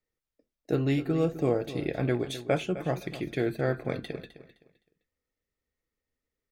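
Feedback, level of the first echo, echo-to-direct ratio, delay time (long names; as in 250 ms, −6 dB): 27%, −14.0 dB, −13.5 dB, 258 ms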